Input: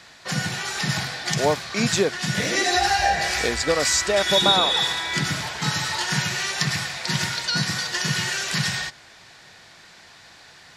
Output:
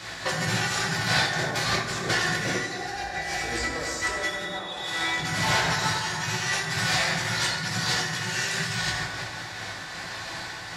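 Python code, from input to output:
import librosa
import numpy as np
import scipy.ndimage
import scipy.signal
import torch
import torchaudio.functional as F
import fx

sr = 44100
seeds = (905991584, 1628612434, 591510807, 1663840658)

y = fx.over_compress(x, sr, threshold_db=-33.0, ratio=-1.0)
y = fx.rev_fdn(y, sr, rt60_s=2.2, lf_ratio=0.9, hf_ratio=0.4, size_ms=54.0, drr_db=-5.0)
y = fx.am_noise(y, sr, seeds[0], hz=5.7, depth_pct=55)
y = y * 10.0 ** (1.5 / 20.0)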